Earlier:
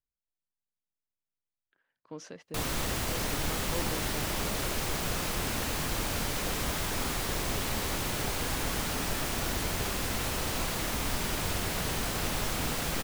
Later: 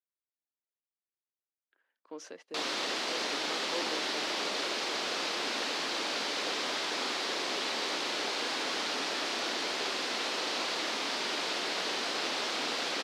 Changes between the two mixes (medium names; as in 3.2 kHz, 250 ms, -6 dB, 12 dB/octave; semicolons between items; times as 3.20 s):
background: add resonant low-pass 4.5 kHz, resonance Q 1.8; master: add high-pass 290 Hz 24 dB/octave